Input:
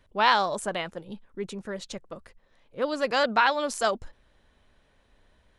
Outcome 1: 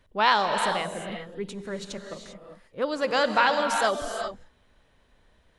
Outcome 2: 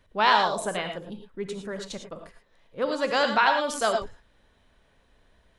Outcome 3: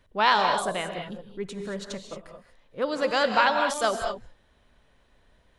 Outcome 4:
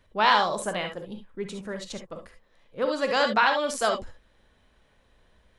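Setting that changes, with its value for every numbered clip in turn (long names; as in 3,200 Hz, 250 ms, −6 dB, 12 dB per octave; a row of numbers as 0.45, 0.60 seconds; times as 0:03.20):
reverb whose tail is shaped and stops, gate: 420, 130, 250, 90 milliseconds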